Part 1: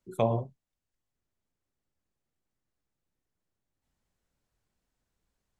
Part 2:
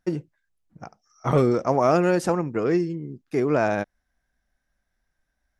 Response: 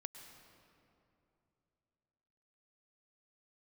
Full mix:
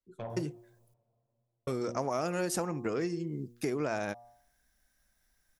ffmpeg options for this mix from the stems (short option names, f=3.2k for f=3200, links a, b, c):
-filter_complex "[0:a]lowpass=6.1k,flanger=delay=1.8:depth=9.9:regen=39:speed=1.7:shape=triangular,asoftclip=type=tanh:threshold=-23dB,volume=-9dB,asplit=2[a][b];[b]volume=-12dB[c];[1:a]bandreject=f=118.7:t=h:w=4,bandreject=f=237.4:t=h:w=4,bandreject=f=356.1:t=h:w=4,bandreject=f=474.8:t=h:w=4,bandreject=f=593.5:t=h:w=4,bandreject=f=712.2:t=h:w=4,bandreject=f=830.9:t=h:w=4,bandreject=f=949.6:t=h:w=4,bandreject=f=1.0683k:t=h:w=4,bandreject=f=1.187k:t=h:w=4,acompressor=threshold=-32dB:ratio=4,crystalizer=i=3:c=0,adelay=300,volume=0dB,asplit=3[d][e][f];[d]atrim=end=0.94,asetpts=PTS-STARTPTS,afade=t=out:st=0.936:d=0.004:c=hsin[g];[e]atrim=start=0.94:end=1.67,asetpts=PTS-STARTPTS,volume=0[h];[f]atrim=start=1.67,asetpts=PTS-STARTPTS,afade=t=in:d=0.004:c=hsin[i];[g][h][i]concat=n=3:v=0:a=1[j];[2:a]atrim=start_sample=2205[k];[c][k]afir=irnorm=-1:irlink=0[l];[a][j][l]amix=inputs=3:normalize=0"